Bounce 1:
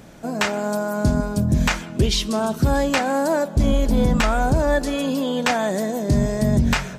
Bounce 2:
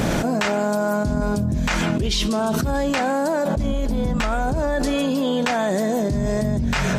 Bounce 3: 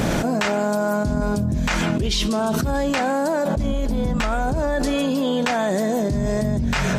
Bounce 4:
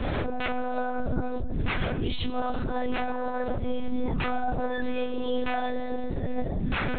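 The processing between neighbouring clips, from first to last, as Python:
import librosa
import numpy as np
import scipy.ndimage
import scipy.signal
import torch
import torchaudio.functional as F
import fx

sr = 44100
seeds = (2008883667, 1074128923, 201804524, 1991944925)

y1 = fx.high_shelf(x, sr, hz=8500.0, db=-5.0)
y1 = fx.env_flatten(y1, sr, amount_pct=100)
y1 = y1 * 10.0 ** (-7.5 / 20.0)
y2 = y1
y3 = fx.chorus_voices(y2, sr, voices=6, hz=0.31, base_ms=28, depth_ms=4.3, mix_pct=45)
y3 = fx.lpc_monotone(y3, sr, seeds[0], pitch_hz=250.0, order=10)
y3 = y3 * 10.0 ** (-4.0 / 20.0)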